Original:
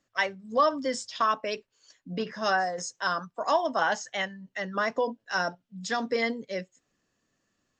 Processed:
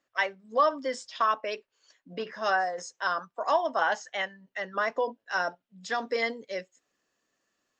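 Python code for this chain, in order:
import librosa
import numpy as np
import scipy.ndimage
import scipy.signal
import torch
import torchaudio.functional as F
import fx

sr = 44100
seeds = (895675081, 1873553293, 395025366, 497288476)

y = fx.bass_treble(x, sr, bass_db=-14, treble_db=fx.steps((0.0, -7.0), (6.06, -1.0)))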